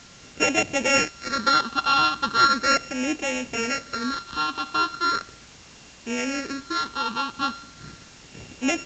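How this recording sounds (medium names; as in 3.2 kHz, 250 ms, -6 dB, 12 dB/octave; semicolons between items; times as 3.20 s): a buzz of ramps at a fixed pitch in blocks of 32 samples; phasing stages 6, 0.38 Hz, lowest notch 560–1200 Hz; a quantiser's noise floor 8-bit, dither triangular; A-law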